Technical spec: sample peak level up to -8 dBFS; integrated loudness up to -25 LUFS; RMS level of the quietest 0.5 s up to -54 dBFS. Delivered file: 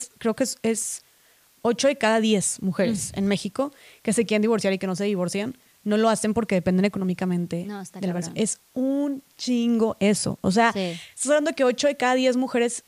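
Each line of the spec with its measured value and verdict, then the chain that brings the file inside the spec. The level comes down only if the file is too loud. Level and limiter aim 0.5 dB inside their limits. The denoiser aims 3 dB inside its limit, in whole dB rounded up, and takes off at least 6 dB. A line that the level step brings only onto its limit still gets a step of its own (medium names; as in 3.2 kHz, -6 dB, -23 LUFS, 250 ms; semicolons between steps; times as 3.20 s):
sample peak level -6.0 dBFS: fail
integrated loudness -23.5 LUFS: fail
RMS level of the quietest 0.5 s -59 dBFS: pass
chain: trim -2 dB; peak limiter -8.5 dBFS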